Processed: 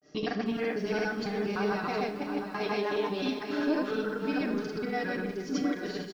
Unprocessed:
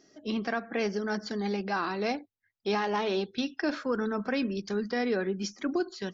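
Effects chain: local time reversal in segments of 0.164 s; high shelf 6400 Hz -9.5 dB; notch 540 Hz, Q 13; comb 6.7 ms, depth 46%; in parallel at -0.5 dB: limiter -27.5 dBFS, peak gain reduction 10.5 dB; on the sum: vocal rider within 3 dB 0.5 s; grains 0.167 s, grains 20/s, pitch spread up and down by 0 st; on a send: echo 0.712 s -8.5 dB; on the sum: Schroeder reverb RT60 0.47 s, combs from 27 ms, DRR 8.5 dB; lo-fi delay 0.312 s, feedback 55%, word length 8-bit, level -14.5 dB; gain -1.5 dB

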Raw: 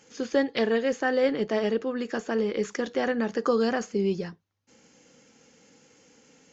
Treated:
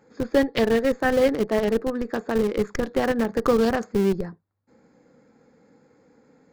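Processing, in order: Wiener smoothing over 15 samples; in parallel at -4.5 dB: Schmitt trigger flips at -22.5 dBFS; on the sum: gain +3 dB

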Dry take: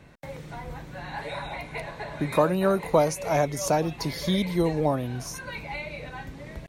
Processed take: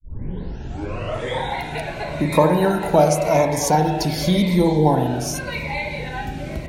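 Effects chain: tape start at the beginning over 1.49 s; spectral delete 4.64–4.86, 970–3600 Hz; dynamic EQ 840 Hz, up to +6 dB, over -39 dBFS, Q 2.3; in parallel at +1 dB: compressor, threshold -35 dBFS, peak gain reduction 20 dB; on the sum: notch 1200 Hz, Q 7.2; spring tank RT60 1.5 s, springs 39/45 ms, chirp 25 ms, DRR 3.5 dB; cascading phaser falling 0.89 Hz; gain +4.5 dB

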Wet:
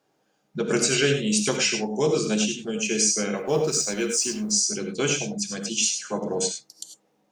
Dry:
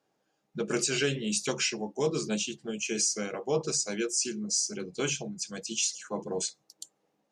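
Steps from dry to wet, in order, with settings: 3.37–4.51 G.711 law mismatch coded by A; non-linear reverb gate 0.12 s rising, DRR 5 dB; gain +5.5 dB

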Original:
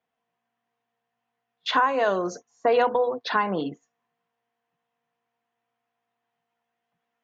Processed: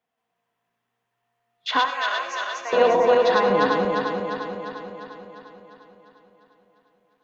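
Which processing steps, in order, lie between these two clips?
regenerating reverse delay 0.175 s, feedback 76%, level -1 dB; 1.85–2.73 HPF 1400 Hz 12 dB/oct; digital reverb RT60 0.4 s, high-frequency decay 0.6×, pre-delay 45 ms, DRR 8.5 dB

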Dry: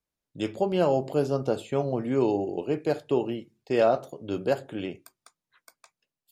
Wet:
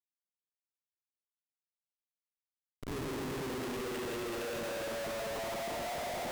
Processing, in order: HPF 110 Hz 24 dB/oct; low shelf 150 Hz -9.5 dB; compressor 6:1, threshold -27 dBFS, peak gain reduction 9 dB; phaser 0.85 Hz, delay 1.7 ms, feedback 49%; Paulstretch 14×, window 0.10 s, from 3.47; Schmitt trigger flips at -40.5 dBFS; gain -4 dB

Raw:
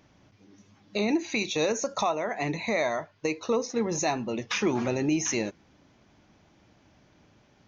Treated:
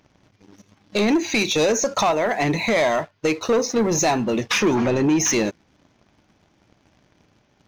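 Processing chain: sample leveller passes 2; 4.75–5.2 high shelf 5500 Hz -10.5 dB; gain +3 dB

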